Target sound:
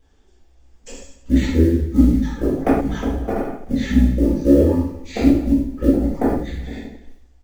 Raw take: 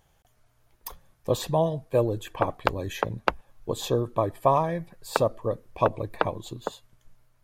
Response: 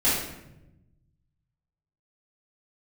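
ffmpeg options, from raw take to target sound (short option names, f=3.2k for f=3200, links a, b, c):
-filter_complex "[0:a]aecho=1:1:75|150|225|300|375|450|525:0.316|0.18|0.103|0.0586|0.0334|0.019|0.0108,asetrate=22696,aresample=44100,atempo=1.94306,acrusher=bits=7:mode=log:mix=0:aa=0.000001[a];[1:a]atrim=start_sample=2205,atrim=end_sample=6174[b];[a][b]afir=irnorm=-1:irlink=0,volume=-8.5dB"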